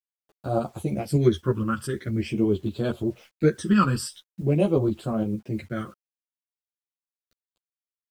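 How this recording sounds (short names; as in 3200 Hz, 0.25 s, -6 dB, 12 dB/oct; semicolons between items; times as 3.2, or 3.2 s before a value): phasing stages 12, 0.45 Hz, lowest notch 670–2000 Hz; a quantiser's noise floor 10-bit, dither none; tremolo saw up 8.6 Hz, depth 40%; a shimmering, thickened sound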